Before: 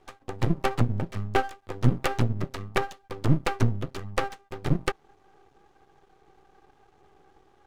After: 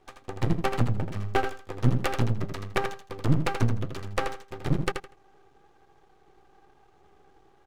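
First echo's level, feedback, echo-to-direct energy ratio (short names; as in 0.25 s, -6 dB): -6.5 dB, 21%, -6.5 dB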